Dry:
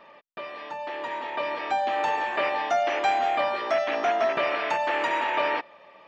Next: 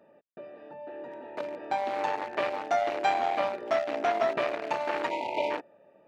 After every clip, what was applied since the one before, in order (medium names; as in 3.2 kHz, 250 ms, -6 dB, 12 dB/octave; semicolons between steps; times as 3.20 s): local Wiener filter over 41 samples; spectral selection erased 5.10–5.51 s, 990–2000 Hz; high-pass 86 Hz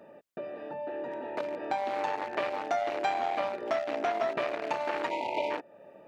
compression 2:1, threshold -42 dBFS, peak gain reduction 11.5 dB; trim +7 dB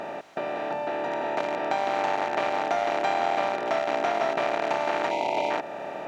spectral levelling over time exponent 0.4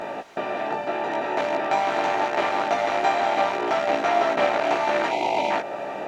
chorus voices 6, 0.47 Hz, delay 17 ms, depth 2.7 ms; trim +7 dB